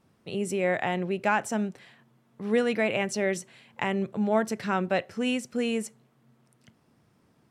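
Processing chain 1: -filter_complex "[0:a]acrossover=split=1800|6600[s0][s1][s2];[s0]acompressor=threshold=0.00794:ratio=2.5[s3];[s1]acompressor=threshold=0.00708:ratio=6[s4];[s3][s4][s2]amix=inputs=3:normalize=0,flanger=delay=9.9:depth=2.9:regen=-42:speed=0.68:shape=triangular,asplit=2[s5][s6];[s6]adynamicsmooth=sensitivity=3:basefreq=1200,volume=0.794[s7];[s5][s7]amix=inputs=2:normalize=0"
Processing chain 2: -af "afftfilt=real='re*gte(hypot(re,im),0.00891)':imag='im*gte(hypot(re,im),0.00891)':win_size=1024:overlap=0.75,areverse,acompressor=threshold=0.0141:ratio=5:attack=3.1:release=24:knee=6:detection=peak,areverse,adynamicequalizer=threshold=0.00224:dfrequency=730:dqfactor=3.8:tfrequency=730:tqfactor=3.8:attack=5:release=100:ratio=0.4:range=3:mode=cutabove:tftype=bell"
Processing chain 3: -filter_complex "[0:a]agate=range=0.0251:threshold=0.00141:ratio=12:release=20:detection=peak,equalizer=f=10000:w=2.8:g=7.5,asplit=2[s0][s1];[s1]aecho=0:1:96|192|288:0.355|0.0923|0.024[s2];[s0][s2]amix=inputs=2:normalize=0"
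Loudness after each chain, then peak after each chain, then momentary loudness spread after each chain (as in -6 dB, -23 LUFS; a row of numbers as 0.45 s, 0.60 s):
-39.5 LUFS, -39.0 LUFS, -27.5 LUFS; -19.5 dBFS, -25.0 dBFS, -10.5 dBFS; 8 LU, 6 LU, 9 LU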